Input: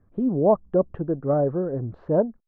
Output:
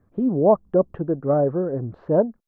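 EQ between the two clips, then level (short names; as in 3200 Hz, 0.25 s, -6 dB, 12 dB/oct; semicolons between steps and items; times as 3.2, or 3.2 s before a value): low shelf 63 Hz -10 dB; +2.5 dB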